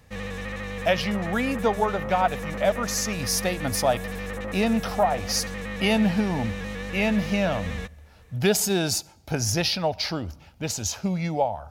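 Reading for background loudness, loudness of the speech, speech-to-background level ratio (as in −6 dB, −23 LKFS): −33.5 LKFS, −25.5 LKFS, 8.0 dB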